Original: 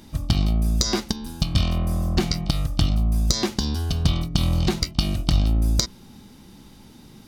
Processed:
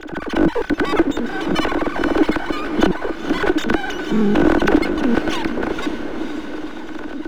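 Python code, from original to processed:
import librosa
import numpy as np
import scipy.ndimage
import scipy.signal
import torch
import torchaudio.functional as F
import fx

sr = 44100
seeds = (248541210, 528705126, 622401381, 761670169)

p1 = fx.sine_speech(x, sr)
p2 = scipy.signal.sosfilt(scipy.signal.butter(2, 200.0, 'highpass', fs=sr, output='sos'), p1)
p3 = fx.tilt_eq(p2, sr, slope=-3.5)
p4 = fx.transient(p3, sr, attack_db=-8, sustain_db=11)
p5 = np.maximum(p4, 0.0)
p6 = fx.small_body(p5, sr, hz=(310.0, 1500.0), ring_ms=45, db=14)
p7 = p6 + fx.echo_diffused(p6, sr, ms=508, feedback_pct=48, wet_db=-11, dry=0)
p8 = fx.band_squash(p7, sr, depth_pct=40)
y = F.gain(torch.from_numpy(p8), -1.5).numpy()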